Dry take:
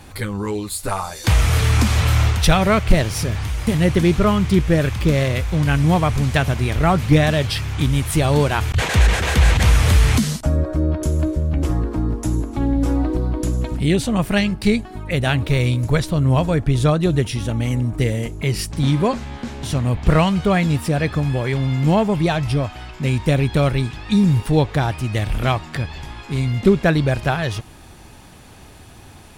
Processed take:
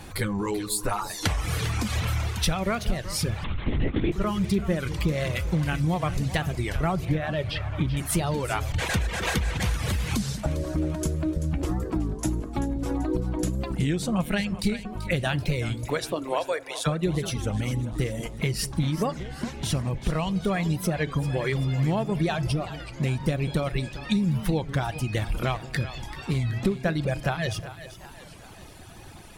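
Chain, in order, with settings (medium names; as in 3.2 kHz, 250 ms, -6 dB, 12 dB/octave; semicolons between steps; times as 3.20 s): 15.85–16.86 s: high-pass 180 Hz -> 730 Hz 24 dB/octave; reverb removal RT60 1.3 s; 7.05–7.97 s: low-pass 2.4 kHz 12 dB/octave; compression 12:1, threshold -22 dBFS, peak gain reduction 16 dB; two-band feedback delay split 550 Hz, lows 197 ms, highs 386 ms, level -13 dB; on a send at -14 dB: reverberation RT60 0.75 s, pre-delay 5 ms; 3.44–4.12 s: on the sum: LPC vocoder at 8 kHz whisper; warped record 33 1/3 rpm, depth 160 cents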